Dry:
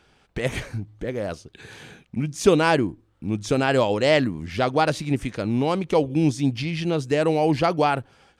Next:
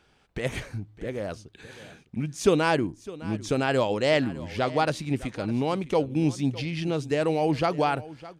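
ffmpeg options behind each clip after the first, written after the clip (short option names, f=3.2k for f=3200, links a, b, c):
-af "aecho=1:1:608:0.126,volume=-4dB"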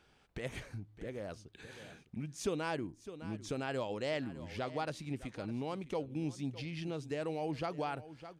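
-af "acompressor=threshold=-45dB:ratio=1.5,volume=-4.5dB"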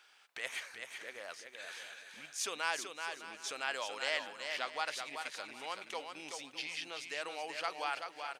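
-filter_complex "[0:a]highpass=1.2k,asplit=2[a][b];[b]aecho=0:1:381|762|1143:0.501|0.1|0.02[c];[a][c]amix=inputs=2:normalize=0,volume=7.5dB"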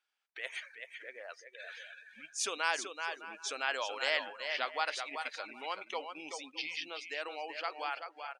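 -af "afftdn=nr=22:nf=-48,dynaudnorm=f=320:g=11:m=3.5dB"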